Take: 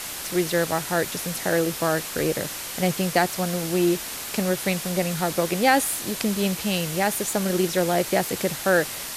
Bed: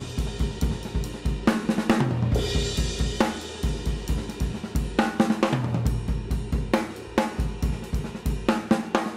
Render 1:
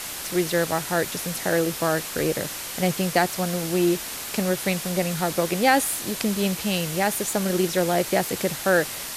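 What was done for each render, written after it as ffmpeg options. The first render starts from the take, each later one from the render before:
-af anull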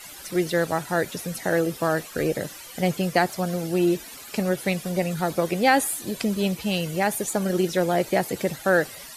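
-af "afftdn=nr=14:nf=-34"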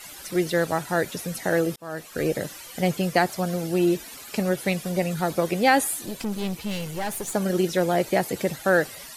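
-filter_complex "[0:a]asettb=1/sr,asplit=3[a][b][c];[a]atrim=end=6.064[d];[b]atrim=start=6.06:end=7.33,asetpts=PTS-STARTPTS,afade=t=in:d=0.004:c=qsin,afade=t=out:st=1.266:d=0.004:c=qsin,aeval=exprs='(tanh(15.8*val(0)+0.5)-tanh(0.5))/15.8':c=same[e];[c]atrim=start=7.326[f];[d][e]acrossfade=d=0.004:c1=hsin:c2=qsin[g];[g][f]acrossfade=d=0.004:c1=qsin:c2=hsin,asplit=2[h][i];[h]atrim=end=1.76,asetpts=PTS-STARTPTS,afade=t=out:st=1.756:d=0.004:c=hsin[j];[i]atrim=start=1.76,asetpts=PTS-STARTPTS,afade=t=in:d=0.51[k];[j][k]concat=n=2:v=0:a=1"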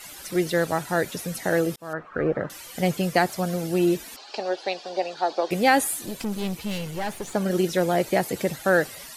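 -filter_complex "[0:a]asettb=1/sr,asplit=3[a][b][c];[a]atrim=end=1.934[d];[b]atrim=start=1.93:end=2.5,asetpts=PTS-STARTPTS,afade=t=in:d=0.004:c=qsin,afade=t=out:st=0.566:d=0.004:c=qsin,lowpass=f=1.3k:t=q:w=3.2[e];[c]atrim=start=2.496[f];[d][e]acrossfade=d=0.004:c1=hsin:c2=qsin[g];[g][f]acrossfade=d=0.004:c1=qsin:c2=hsin,asettb=1/sr,asplit=3[h][i][j];[h]atrim=end=4.164[k];[i]atrim=start=4.16:end=5.51,asetpts=PTS-STARTPTS,afade=t=in:d=0.004:c=qsin,afade=t=out:st=1.346:d=0.004:c=qsin,highpass=f=360:w=0.5412,highpass=f=360:w=1.3066,equalizer=f=470:t=q:w=4:g=-3,equalizer=f=790:t=q:w=4:g=8,equalizer=f=1.3k:t=q:w=4:g=-4,equalizer=f=2.1k:t=q:w=4:g=-9,equalizer=f=4.5k:t=q:w=4:g=6,lowpass=f=5.3k:w=0.5412,lowpass=f=5.3k:w=1.3066[l];[j]atrim=start=5.506[m];[k][l]acrossfade=d=0.004:c1=hsin:c2=qsin[n];[n][m]acrossfade=d=0.004:c1=qsin:c2=hsin,asettb=1/sr,asplit=3[o][p][q];[o]atrim=end=6.784[r];[p]atrim=start=6.78:end=7.51,asetpts=PTS-STARTPTS,afade=t=in:d=0.004:c=qsin,afade=t=out:st=0.726:d=0.004:c=qsin,acrossover=split=5500[s][t];[t]acompressor=threshold=-44dB:ratio=4:attack=1:release=60[u];[s][u]amix=inputs=2:normalize=0[v];[q]atrim=start=7.506[w];[r][v]acrossfade=d=0.004:c1=hsin:c2=qsin[x];[x][w]acrossfade=d=0.004:c1=qsin:c2=hsin"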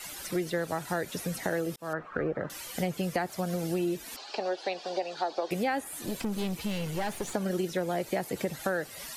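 -filter_complex "[0:a]acrossover=split=400|1100|2800[a][b][c][d];[d]alimiter=level_in=4dB:limit=-24dB:level=0:latency=1:release=180,volume=-4dB[e];[a][b][c][e]amix=inputs=4:normalize=0,acompressor=threshold=-28dB:ratio=4"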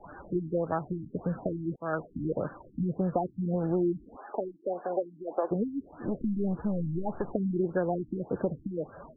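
-filter_complex "[0:a]asplit=2[a][b];[b]asoftclip=type=tanh:threshold=-27.5dB,volume=-5.5dB[c];[a][c]amix=inputs=2:normalize=0,afftfilt=real='re*lt(b*sr/1024,310*pow(1800/310,0.5+0.5*sin(2*PI*1.7*pts/sr)))':imag='im*lt(b*sr/1024,310*pow(1800/310,0.5+0.5*sin(2*PI*1.7*pts/sr)))':win_size=1024:overlap=0.75"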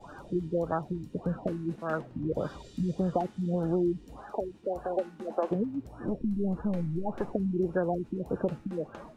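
-filter_complex "[1:a]volume=-25dB[a];[0:a][a]amix=inputs=2:normalize=0"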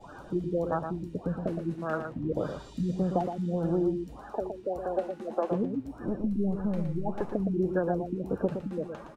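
-af "aecho=1:1:116:0.447"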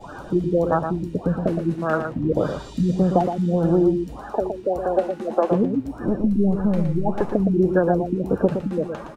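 -af "volume=9.5dB"

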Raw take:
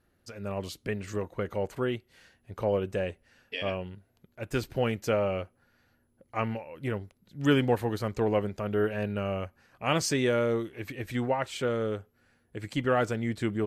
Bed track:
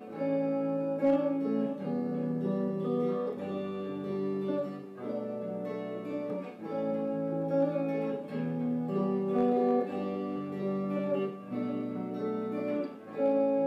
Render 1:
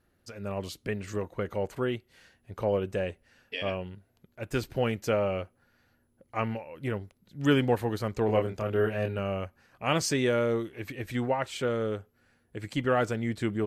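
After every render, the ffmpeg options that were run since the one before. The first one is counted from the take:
-filter_complex "[0:a]asettb=1/sr,asplit=3[a][b][c];[a]atrim=end=8.264[d];[b]atrim=start=8.26:end=9.19,asetpts=PTS-STARTPTS,afade=t=in:d=0.004:c=qsin,afade=t=out:st=0.926:d=0.004:c=qsin,asplit=2[e][f];[f]adelay=27,volume=-4dB[g];[e][g]amix=inputs=2:normalize=0,atrim=end_sample=41013[h];[c]atrim=start=9.186[i];[d][h]acrossfade=d=0.004:c1=hsin:c2=qsin[j];[j][i]acrossfade=d=0.004:c1=qsin:c2=hsin"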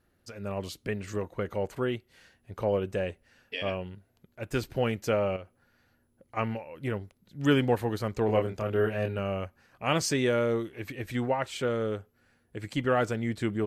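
-filter_complex "[0:a]asettb=1/sr,asplit=3[a][b][c];[a]atrim=end=5.364[d];[b]atrim=start=5.36:end=6.37,asetpts=PTS-STARTPTS,afade=t=in:d=0.004:c=qsin,afade=t=out:st=1.006:d=0.004:c=qsin,acompressor=threshold=-42dB:ratio=2.5:attack=3.2:release=140:knee=1:detection=peak[e];[c]atrim=start=6.366[f];[d][e]acrossfade=d=0.004:c1=hsin:c2=qsin[g];[g][f]acrossfade=d=0.004:c1=qsin:c2=hsin"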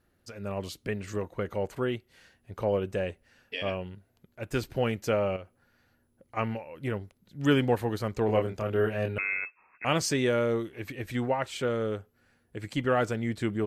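-filter_complex "[0:a]asettb=1/sr,asplit=3[a][b][c];[a]atrim=end=9.184[d];[b]atrim=start=9.18:end=9.85,asetpts=PTS-STARTPTS,afade=t=in:d=0.004:c=qsin,afade=t=out:st=0.666:d=0.004:c=qsin,lowpass=f=2.3k:t=q:w=0.5098,lowpass=f=2.3k:t=q:w=0.6013,lowpass=f=2.3k:t=q:w=0.9,lowpass=f=2.3k:t=q:w=2.563,afreqshift=-2700[e];[c]atrim=start=9.846[f];[d][e]acrossfade=d=0.004:c1=hsin:c2=qsin[g];[g][f]acrossfade=d=0.004:c1=qsin:c2=hsin"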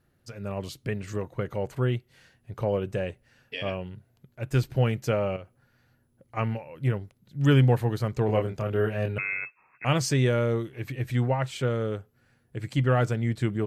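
-af "equalizer=f=130:t=o:w=0.4:g=13.5"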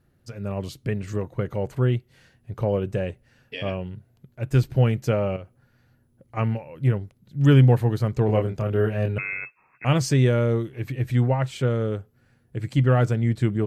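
-af "lowshelf=f=450:g=5.5"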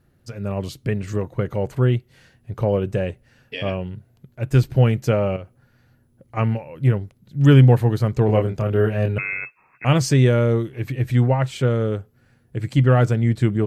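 -af "volume=3.5dB"

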